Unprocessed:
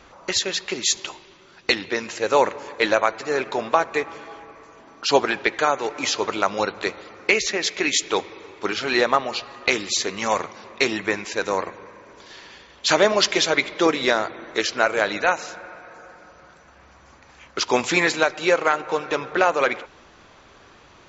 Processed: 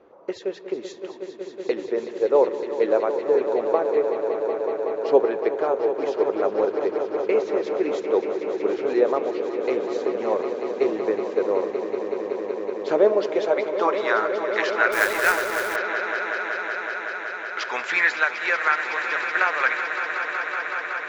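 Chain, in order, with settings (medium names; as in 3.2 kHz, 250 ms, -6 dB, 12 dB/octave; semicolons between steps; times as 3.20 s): band-pass sweep 440 Hz -> 1.7 kHz, 13.20–14.39 s; echo with a slow build-up 187 ms, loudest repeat 5, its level -11 dB; 14.92–15.76 s: companded quantiser 4-bit; trim +4 dB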